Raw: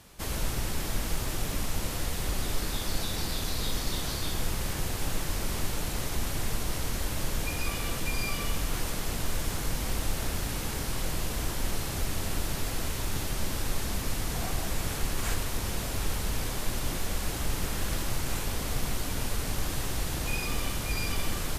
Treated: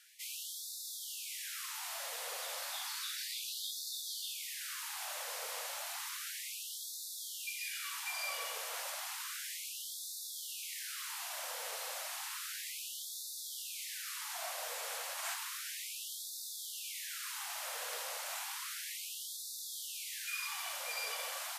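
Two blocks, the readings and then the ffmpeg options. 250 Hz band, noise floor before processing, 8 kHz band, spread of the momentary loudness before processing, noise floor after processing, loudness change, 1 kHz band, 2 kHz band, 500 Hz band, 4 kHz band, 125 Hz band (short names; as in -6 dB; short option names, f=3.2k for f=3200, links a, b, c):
under -40 dB, -34 dBFS, -4.5 dB, 1 LU, -45 dBFS, -7.0 dB, -8.0 dB, -6.0 dB, -13.5 dB, -4.5 dB, under -40 dB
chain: -af "afreqshift=-28,afftfilt=real='re*gte(b*sr/1024,430*pow(3500/430,0.5+0.5*sin(2*PI*0.32*pts/sr)))':imag='im*gte(b*sr/1024,430*pow(3500/430,0.5+0.5*sin(2*PI*0.32*pts/sr)))':win_size=1024:overlap=0.75,volume=-4.5dB"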